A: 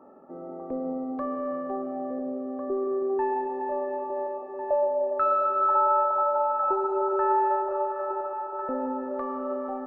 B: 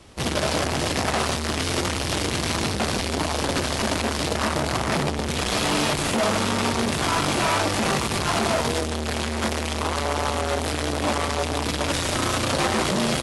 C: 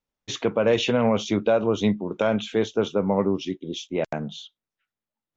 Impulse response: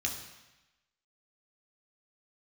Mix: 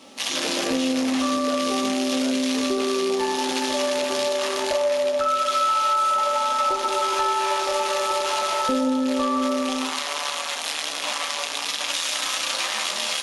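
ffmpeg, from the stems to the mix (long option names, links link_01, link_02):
-filter_complex "[0:a]dynaudnorm=framelen=150:gausssize=5:maxgain=11.5dB,volume=1dB,asplit=2[link_01][link_02];[link_02]volume=-3.5dB[link_03];[1:a]highpass=930,volume=-1.5dB,asplit=2[link_04][link_05];[link_05]volume=-3.5dB[link_06];[2:a]aemphasis=mode=production:type=riaa,volume=-6.5dB,asplit=2[link_07][link_08];[link_08]apad=whole_len=435116[link_09];[link_01][link_09]sidechaincompress=threshold=-53dB:ratio=8:attack=16:release=1260[link_10];[3:a]atrim=start_sample=2205[link_11];[link_03][link_06]amix=inputs=2:normalize=0[link_12];[link_12][link_11]afir=irnorm=-1:irlink=0[link_13];[link_10][link_04][link_07][link_13]amix=inputs=4:normalize=0,acompressor=threshold=-21dB:ratio=4"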